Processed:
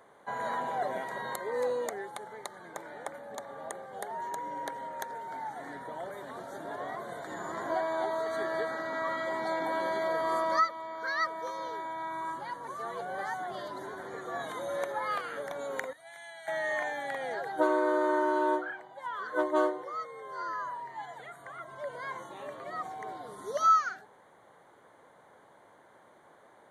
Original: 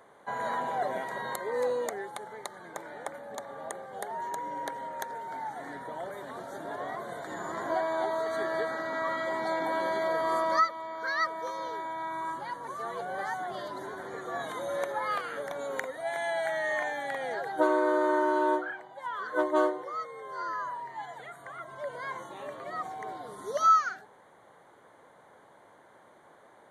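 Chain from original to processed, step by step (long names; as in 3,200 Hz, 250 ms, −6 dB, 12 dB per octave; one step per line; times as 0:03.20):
0:15.93–0:16.48: guitar amp tone stack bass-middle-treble 5-5-5
level −1.5 dB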